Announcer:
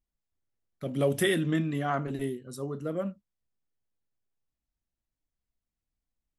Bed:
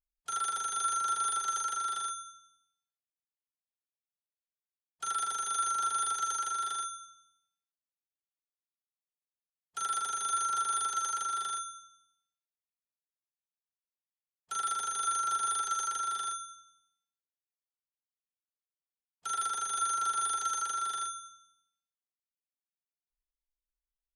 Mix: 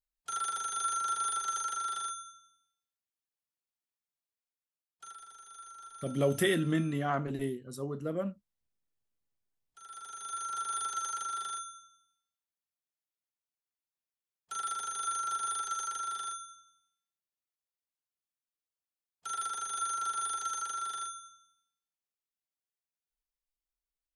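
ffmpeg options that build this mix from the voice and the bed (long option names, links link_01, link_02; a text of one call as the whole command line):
ffmpeg -i stem1.wav -i stem2.wav -filter_complex "[0:a]adelay=5200,volume=-2dB[link_01];[1:a]volume=14dB,afade=type=out:start_time=4.25:duration=0.94:silence=0.141254,afade=type=in:start_time=9.83:duration=1.01:silence=0.16788[link_02];[link_01][link_02]amix=inputs=2:normalize=0" out.wav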